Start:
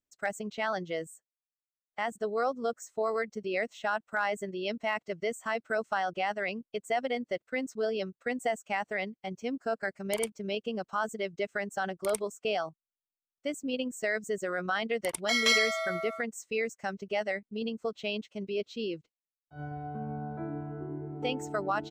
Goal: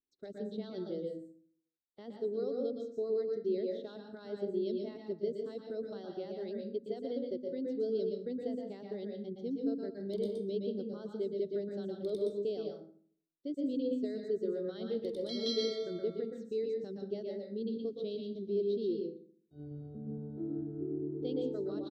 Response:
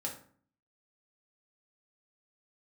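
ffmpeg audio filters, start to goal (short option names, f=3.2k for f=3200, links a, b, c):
-filter_complex "[0:a]firequalizer=gain_entry='entry(150,0);entry(370,11);entry(760,-19);entry(2600,-24);entry(3700,4);entry(7000,-23)':delay=0.05:min_phase=1,asplit=2[a][b];[1:a]atrim=start_sample=2205,adelay=118[c];[b][c]afir=irnorm=-1:irlink=0,volume=-2dB[d];[a][d]amix=inputs=2:normalize=0,volume=-8dB"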